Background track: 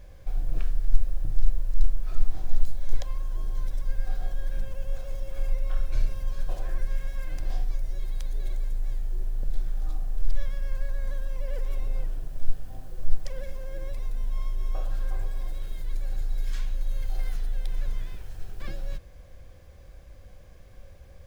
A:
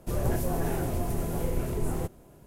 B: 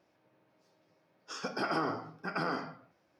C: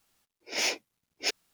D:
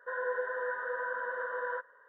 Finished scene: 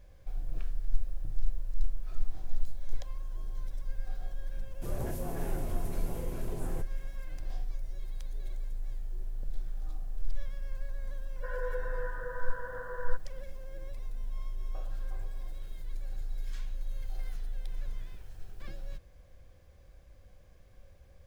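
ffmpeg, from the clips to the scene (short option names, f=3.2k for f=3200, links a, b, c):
-filter_complex "[0:a]volume=-8dB[a];[4:a]lowshelf=f=460:g=9.5[b];[1:a]atrim=end=2.46,asetpts=PTS-STARTPTS,volume=-8.5dB,afade=t=in:d=0.004:c=hsin,afade=t=out:st=2.456:d=0.004:c=hsin,adelay=4750[c];[b]atrim=end=2.08,asetpts=PTS-STARTPTS,volume=-8dB,afade=t=in:d=0.004:c=hsin,afade=t=out:st=2.076:d=0.004:c=hsin,adelay=11360[d];[a][c][d]amix=inputs=3:normalize=0"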